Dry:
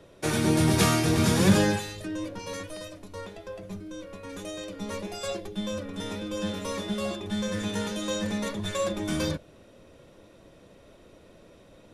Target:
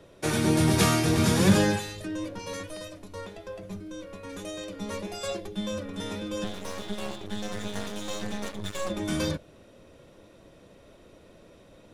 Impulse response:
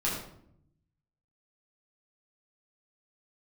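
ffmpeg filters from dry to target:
-filter_complex "[0:a]asettb=1/sr,asplit=3[s0][s1][s2];[s0]atrim=end=6.444[s3];[s1]atrim=start=6.44:end=8.9,asetpts=PTS-STARTPTS,afade=t=in:d=0.004:c=qsin,afade=t=out:st=2.456:d=0.004:c=qsin,aeval=exprs='max(val(0),0)':c=same[s4];[s2]atrim=start=8.896[s5];[s3][s4]acrossfade=d=0.004:c1=hsin:c2=qsin[s6];[s6][s5]acrossfade=d=0.004:c1=qsin:c2=hsin"

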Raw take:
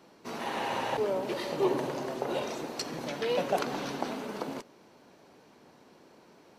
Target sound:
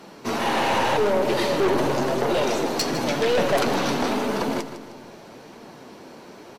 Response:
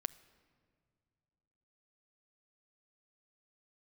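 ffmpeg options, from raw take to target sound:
-filter_complex "[0:a]flanger=delay=4:depth=9.4:regen=57:speed=0.89:shape=triangular,aeval=exprs='(tanh(56.2*val(0)+0.2)-tanh(0.2))/56.2':c=same,aecho=1:1:155|310|465|620:0.251|0.1|0.0402|0.0161,asplit=2[s0][s1];[1:a]atrim=start_sample=2205,asetrate=33957,aresample=44100[s2];[s1][s2]afir=irnorm=-1:irlink=0,volume=3.76[s3];[s0][s3]amix=inputs=2:normalize=0,volume=1.68"

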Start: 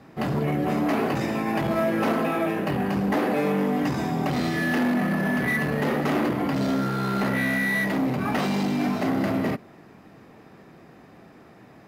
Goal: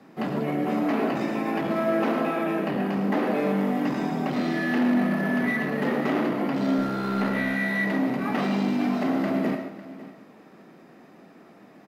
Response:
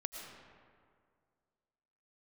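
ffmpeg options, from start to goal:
-filter_complex "[0:a]lowshelf=f=140:t=q:w=1.5:g=-12,acrossover=split=270|4500[s0][s1][s2];[s2]alimiter=level_in=10:limit=0.0631:level=0:latency=1:release=360,volume=0.1[s3];[s0][s1][s3]amix=inputs=3:normalize=0,aecho=1:1:231|552:0.126|0.141,asettb=1/sr,asplit=3[s4][s5][s6];[s4]atrim=end=6.784[s7];[s5]atrim=start=6.78:end=7.54,asetpts=PTS-STARTPTS,afade=t=in:d=0.004:c=qsin,afade=t=out:st=0.756:d=0.004:c=qsin,aeval=exprs='0.355*(cos(1*acos(clip(val(0)/0.355,-1,1)))-cos(1*PI/2))+0.00631*(cos(6*acos(clip(val(0)/0.355,-1,1)))-cos(6*PI/2))':c=same[s8];[s6]atrim=start=7.536[s9];[s7][s8]acrossfade=d=0.004:c1=hsin:c2=qsin[s10];[s10][s9]acrossfade=d=0.004:c1=qsin:c2=hsin[s11];[1:a]atrim=start_sample=2205,atrim=end_sample=6174[s12];[s11][s12]afir=irnorm=-1:irlink=0"

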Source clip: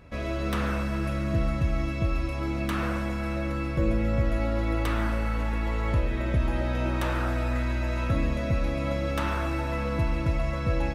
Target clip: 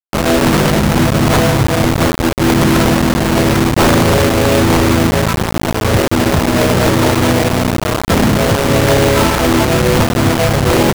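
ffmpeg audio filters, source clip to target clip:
-filter_complex "[0:a]lowpass=f=1100:p=1,bandreject=f=60:t=h:w=6,bandreject=f=120:t=h:w=6,bandreject=f=180:t=h:w=6,bandreject=f=240:t=h:w=6,bandreject=f=300:t=h:w=6,bandreject=f=360:t=h:w=6,bandreject=f=420:t=h:w=6,bandreject=f=480:t=h:w=6,bandreject=f=540:t=h:w=6,afftfilt=real='re*gte(hypot(re,im),0.0794)':imag='im*gte(hypot(re,im),0.0794)':win_size=1024:overlap=0.75,highpass=f=100:w=0.5412,highpass=f=100:w=1.3066,adynamicequalizer=threshold=0.00447:dfrequency=230:dqfactor=3.3:tfrequency=230:tqfactor=3.3:attack=5:release=100:ratio=0.375:range=3.5:mode=cutabove:tftype=bell,acrossover=split=180[s0][s1];[s0]alimiter=level_in=2.82:limit=0.0631:level=0:latency=1:release=180,volume=0.355[s2];[s2][s1]amix=inputs=2:normalize=0,asplit=4[s3][s4][s5][s6];[s4]asetrate=33038,aresample=44100,atempo=1.33484,volume=0.891[s7];[s5]asetrate=52444,aresample=44100,atempo=0.840896,volume=0.316[s8];[s6]asetrate=66075,aresample=44100,atempo=0.66742,volume=0.141[s9];[s3][s7][s8][s9]amix=inputs=4:normalize=0,asplit=2[s10][s11];[s11]asoftclip=type=hard:threshold=0.0398,volume=0.447[s12];[s10][s12]amix=inputs=2:normalize=0,acrusher=bits=4:mix=0:aa=0.000001,aeval=exprs='0.211*sin(PI/2*3.98*val(0)/0.211)':c=same,volume=2.24"

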